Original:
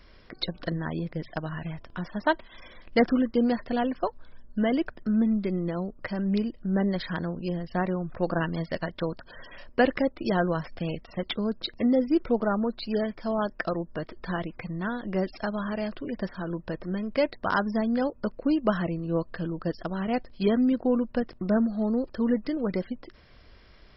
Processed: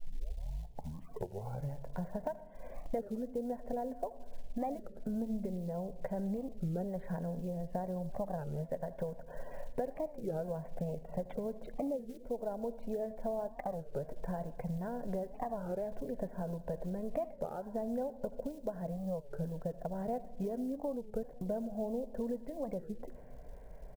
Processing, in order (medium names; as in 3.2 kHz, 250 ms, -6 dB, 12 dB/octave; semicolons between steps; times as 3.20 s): tape start-up on the opening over 1.93 s; low-pass 1.3 kHz 24 dB/octave; peaking EQ 210 Hz -12 dB 0.4 oct; compression 10:1, threshold -40 dBFS, peak gain reduction 21.5 dB; short-mantissa float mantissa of 4-bit; static phaser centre 330 Hz, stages 6; delay 82 ms -20.5 dB; on a send at -16.5 dB: reverberation RT60 1.2 s, pre-delay 69 ms; on the sum: warped record 33 1/3 rpm, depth 250 cents; trim +7.5 dB